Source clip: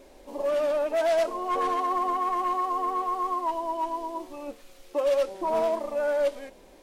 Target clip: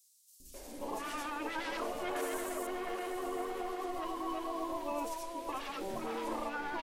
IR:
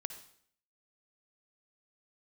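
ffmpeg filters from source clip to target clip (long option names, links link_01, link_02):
-filter_complex "[0:a]acrossover=split=230|5700[link_01][link_02][link_03];[link_01]adelay=400[link_04];[link_02]adelay=540[link_05];[link_04][link_05][link_03]amix=inputs=3:normalize=0,alimiter=limit=-24dB:level=0:latency=1:release=54,asettb=1/sr,asplit=3[link_06][link_07][link_08];[link_06]atrim=end=2.164[link_09];[link_07]atrim=start=2.16:end=2.67,asetpts=PTS-STARTPTS,afade=type=in:duration=0.004:curve=qsin,afade=type=out:start_time=0.506:duration=0.004:curve=qsin,highshelf=frequency=5700:width_type=q:width=1.5:gain=12[link_10];[link_08]atrim=start=2.666[link_11];[link_09][link_10]acrossfade=duration=0.004:curve1=hsin:curve2=qsin[link_12];[link_12][link_11]acrossfade=duration=0.004:curve1=qsin:curve2=hsin,aecho=1:1:782:0.282,afftfilt=real='re*lt(hypot(re,im),0.112)':imag='im*lt(hypot(re,im),0.112)':win_size=1024:overlap=0.75,volume=2.5dB"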